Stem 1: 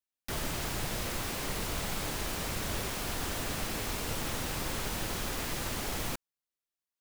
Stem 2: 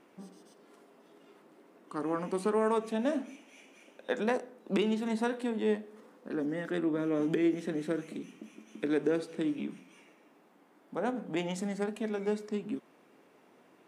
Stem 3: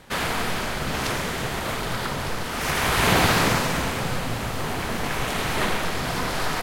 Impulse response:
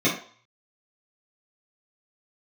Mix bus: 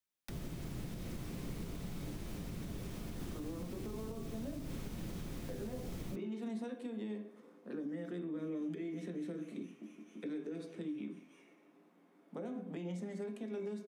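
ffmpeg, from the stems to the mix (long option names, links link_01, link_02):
-filter_complex "[0:a]acrossover=split=300|3000[link_01][link_02][link_03];[link_02]acompressor=threshold=-50dB:ratio=6[link_04];[link_01][link_04][link_03]amix=inputs=3:normalize=0,volume=-0.5dB,asplit=2[link_05][link_06];[link_06]volume=-22.5dB[link_07];[1:a]adelay=1400,volume=-9dB,asplit=2[link_08][link_09];[link_09]volume=-18dB[link_10];[link_08]alimiter=level_in=9dB:limit=-24dB:level=0:latency=1,volume=-9dB,volume=0dB[link_11];[3:a]atrim=start_sample=2205[link_12];[link_07][link_10]amix=inputs=2:normalize=0[link_13];[link_13][link_12]afir=irnorm=-1:irlink=0[link_14];[link_05][link_11][link_14]amix=inputs=3:normalize=0,acrossover=split=160|700|2400[link_15][link_16][link_17][link_18];[link_15]acompressor=threshold=-38dB:ratio=4[link_19];[link_16]acompressor=threshold=-35dB:ratio=4[link_20];[link_17]acompressor=threshold=-55dB:ratio=4[link_21];[link_18]acompressor=threshold=-56dB:ratio=4[link_22];[link_19][link_20][link_21][link_22]amix=inputs=4:normalize=0,alimiter=level_in=9.5dB:limit=-24dB:level=0:latency=1:release=241,volume=-9.5dB"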